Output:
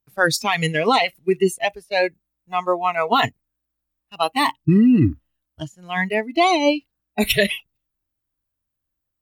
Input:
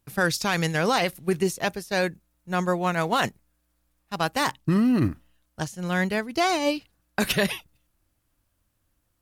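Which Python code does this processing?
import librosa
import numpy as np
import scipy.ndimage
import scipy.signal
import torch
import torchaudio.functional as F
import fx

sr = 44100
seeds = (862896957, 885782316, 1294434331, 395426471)

y = fx.noise_reduce_blind(x, sr, reduce_db=20)
y = y * librosa.db_to_amplitude(7.0)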